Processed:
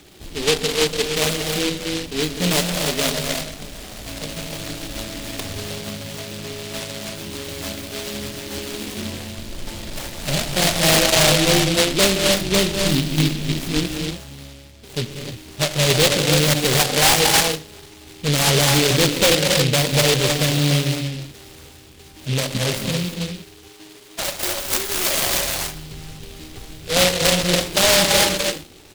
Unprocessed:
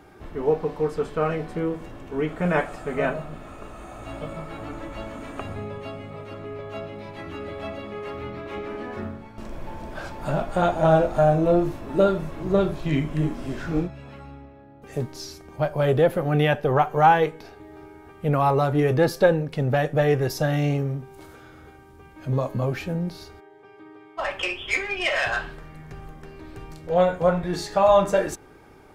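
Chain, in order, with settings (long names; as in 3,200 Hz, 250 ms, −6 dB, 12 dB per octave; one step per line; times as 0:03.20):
reverb whose tail is shaped and stops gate 340 ms rising, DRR 2 dB
downsampling to 8,000 Hz
in parallel at −3.5 dB: wrap-around overflow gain 10.5 dB
on the sum: short delay modulated by noise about 3,200 Hz, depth 0.27 ms
level −2 dB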